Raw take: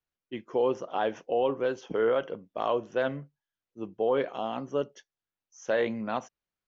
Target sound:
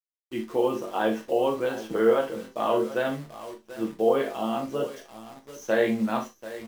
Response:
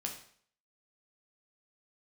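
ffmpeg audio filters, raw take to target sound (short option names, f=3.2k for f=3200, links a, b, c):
-filter_complex "[0:a]aecho=1:1:41|737:0.237|0.178,acrusher=bits=9:dc=4:mix=0:aa=0.000001[a];[1:a]atrim=start_sample=2205,atrim=end_sample=6174,asetrate=70560,aresample=44100[b];[a][b]afir=irnorm=-1:irlink=0,volume=7.5dB"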